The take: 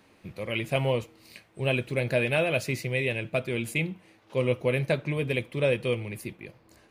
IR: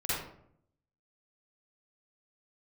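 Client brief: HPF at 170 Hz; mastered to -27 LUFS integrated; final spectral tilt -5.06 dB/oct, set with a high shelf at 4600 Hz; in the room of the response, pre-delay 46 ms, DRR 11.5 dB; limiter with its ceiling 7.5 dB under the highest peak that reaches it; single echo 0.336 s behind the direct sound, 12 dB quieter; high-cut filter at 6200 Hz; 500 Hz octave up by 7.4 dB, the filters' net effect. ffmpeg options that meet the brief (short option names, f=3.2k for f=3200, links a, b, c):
-filter_complex "[0:a]highpass=170,lowpass=6.2k,equalizer=f=500:t=o:g=8.5,highshelf=f=4.6k:g=-6.5,alimiter=limit=-15.5dB:level=0:latency=1,aecho=1:1:336:0.251,asplit=2[a][b];[1:a]atrim=start_sample=2205,adelay=46[c];[b][c]afir=irnorm=-1:irlink=0,volume=-18.5dB[d];[a][d]amix=inputs=2:normalize=0,volume=-0.5dB"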